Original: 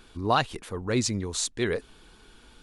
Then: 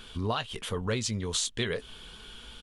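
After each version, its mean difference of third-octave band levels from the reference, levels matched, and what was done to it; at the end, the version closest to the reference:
5.0 dB: thirty-one-band graphic EQ 315 Hz −11 dB, 800 Hz −4 dB, 3,150 Hz +11 dB
downward compressor 16 to 1, threshold −31 dBFS, peak gain reduction 14.5 dB
double-tracking delay 18 ms −11.5 dB
level +4.5 dB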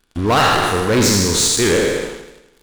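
12.0 dB: peak hold with a decay on every bin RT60 1.17 s
leveller curve on the samples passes 5
feedback echo with a swinging delay time 82 ms, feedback 56%, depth 72 cents, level −10 dB
level −5.5 dB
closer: first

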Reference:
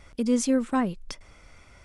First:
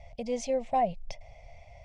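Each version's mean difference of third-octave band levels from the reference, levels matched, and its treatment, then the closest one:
5.5 dB: drawn EQ curve 130 Hz 0 dB, 330 Hz −25 dB, 690 Hz +11 dB, 1,400 Hz −30 dB, 2,100 Hz −4 dB, 3,800 Hz −10 dB, 6,100 Hz −10 dB, 9,800 Hz −26 dB
level +2.5 dB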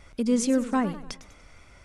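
2.0 dB: feedback echo with a swinging delay time 99 ms, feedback 48%, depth 199 cents, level −14 dB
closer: second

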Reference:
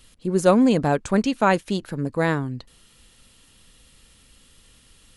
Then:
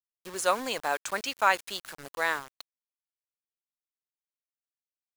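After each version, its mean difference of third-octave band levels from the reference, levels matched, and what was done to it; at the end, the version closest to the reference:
11.5 dB: high-pass filter 1,000 Hz 12 dB per octave
bit reduction 7 bits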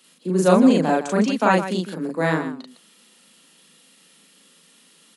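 6.0 dB: Butterworth high-pass 160 Hz 96 dB per octave
loudspeakers that aren't time-aligned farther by 13 metres 0 dB, 54 metres −10 dB
level −1.5 dB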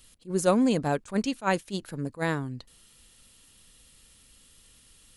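2.5 dB: high-shelf EQ 5,300 Hz +8 dB
level that may rise only so fast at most 330 dB per second
level −6 dB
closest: third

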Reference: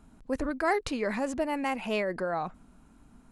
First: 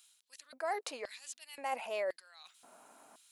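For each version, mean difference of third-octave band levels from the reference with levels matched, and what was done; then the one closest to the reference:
12.0 dB: high-shelf EQ 6,500 Hz +10.5 dB
reversed playback
downward compressor 10 to 1, threshold −39 dBFS, peak gain reduction 18 dB
reversed playback
auto-filter high-pass square 0.95 Hz 630–3,500 Hz
level +3 dB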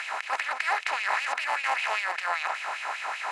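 16.0 dB: compressor on every frequency bin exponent 0.2
meter weighting curve A
auto-filter high-pass sine 5.1 Hz 860–2,700 Hz
level −6 dB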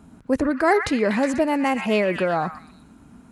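2.0 dB: high-pass filter 84 Hz 12 dB per octave
low-shelf EQ 490 Hz +5.5 dB
on a send: echo through a band-pass that steps 122 ms, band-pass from 1,700 Hz, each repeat 0.7 octaves, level −4 dB
on the sum: level +6.5 dB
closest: third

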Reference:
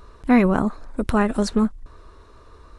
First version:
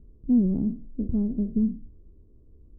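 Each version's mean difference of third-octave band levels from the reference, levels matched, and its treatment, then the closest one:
9.0 dB: peak hold with a decay on every bin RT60 0.35 s
transistor ladder low-pass 340 Hz, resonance 25%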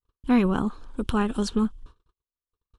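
3.5 dB: noise gate −39 dBFS, range −51 dB
thirty-one-band graphic EQ 630 Hz −11 dB, 2,000 Hz −10 dB, 3,150 Hz +12 dB
level −4 dB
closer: second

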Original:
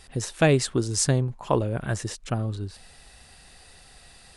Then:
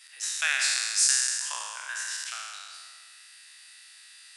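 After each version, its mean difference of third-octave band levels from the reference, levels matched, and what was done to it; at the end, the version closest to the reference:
15.0 dB: peak hold with a decay on every bin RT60 1.91 s
high-pass filter 1,500 Hz 24 dB per octave
level −1 dB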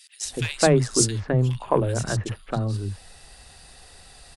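7.5 dB: in parallel at −6.5 dB: hard clipping −16 dBFS, distortion −14 dB
on the sum: three-band delay without the direct sound highs, mids, lows 210/250 ms, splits 210/2,200 Hz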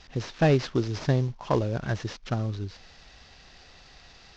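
4.0 dB: variable-slope delta modulation 32 kbit/s
in parallel at −11 dB: asymmetric clip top −16.5 dBFS, bottom −12.5 dBFS
on the sum: level −3 dB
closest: third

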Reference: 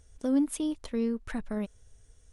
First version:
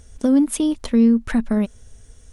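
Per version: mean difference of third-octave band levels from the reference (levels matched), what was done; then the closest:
2.0 dB: parametric band 230 Hz +8.5 dB 0.23 octaves
in parallel at +2 dB: downward compressor, threshold −30 dBFS, peak gain reduction 10.5 dB
on the sum: level +5 dB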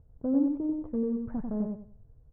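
8.0 dB: low-pass filter 1,000 Hz 24 dB per octave
parametric band 130 Hz +14.5 dB 0.79 octaves
repeating echo 94 ms, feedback 26%, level −4 dB
level −2.5 dB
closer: first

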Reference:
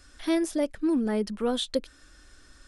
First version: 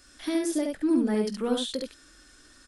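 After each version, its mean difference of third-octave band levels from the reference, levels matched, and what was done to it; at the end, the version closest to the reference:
3.5 dB: spectral tilt +1.5 dB per octave
brickwall limiter −21.5 dBFS, peak gain reduction 5.5 dB
parametric band 270 Hz +6 dB 1.6 octaves
on a send: ambience of single reflections 20 ms −13 dB, 49 ms −14.5 dB, 70 ms −3.5 dB
on the sum: level −2.5 dB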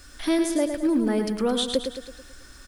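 6.0 dB: high-shelf EQ 9,000 Hz +4.5 dB
in parallel at 0 dB: downward compressor, threshold −33 dBFS, peak gain reduction 12 dB
on the sum: bit-depth reduction 10 bits, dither none
repeating echo 109 ms, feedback 50%, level −7 dB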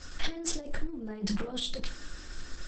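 13.0 dB: compressor whose output falls as the input rises −36 dBFS, ratio −1
rectangular room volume 160 cubic metres, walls furnished, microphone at 0.9 metres
Opus 10 kbit/s 48,000 Hz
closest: first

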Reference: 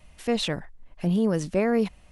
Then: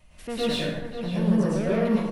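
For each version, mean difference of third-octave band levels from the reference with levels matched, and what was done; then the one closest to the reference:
9.5 dB: dynamic equaliser 6,900 Hz, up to −7 dB, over −53 dBFS, Q 1.8
soft clipping −23.5 dBFS, distortion −10 dB
slap from a distant wall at 93 metres, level −8 dB
dense smooth reverb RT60 1 s, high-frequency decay 0.6×, pre-delay 95 ms, DRR −7.5 dB
level −4 dB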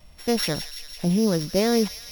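7.0 dB: samples sorted by size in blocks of 8 samples
parametric band 4,000 Hz +5.5 dB 0.31 octaves
delay with a high-pass on its return 168 ms, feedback 71%, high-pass 2,400 Hz, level −8 dB
level +2 dB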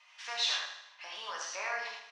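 15.0 dB: elliptic band-pass filter 1,000–5,800 Hz, stop band 70 dB
dynamic equaliser 2,100 Hz, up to −7 dB, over −47 dBFS, Q 0.72
on a send: repeating echo 78 ms, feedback 54%, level −9.5 dB
on the sum: reverb whose tail is shaped and stops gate 140 ms flat, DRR −3.5 dB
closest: second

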